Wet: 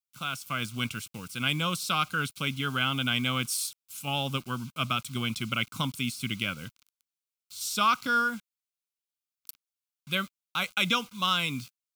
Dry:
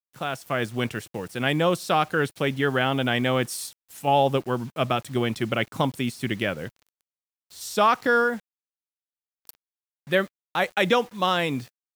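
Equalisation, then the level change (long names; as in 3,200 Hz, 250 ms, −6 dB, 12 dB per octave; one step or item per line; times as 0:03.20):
Butterworth band-reject 1,800 Hz, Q 3.1
tilt shelving filter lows −3.5 dB, about 1,200 Hz
flat-topped bell 540 Hz −13 dB
−1.0 dB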